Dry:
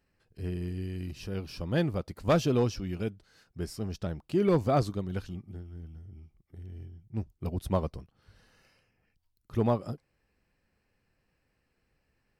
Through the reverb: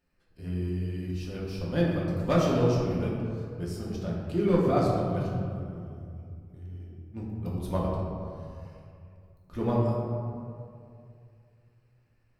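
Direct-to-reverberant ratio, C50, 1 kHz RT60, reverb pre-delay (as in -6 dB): -5.0 dB, 0.0 dB, 2.3 s, 3 ms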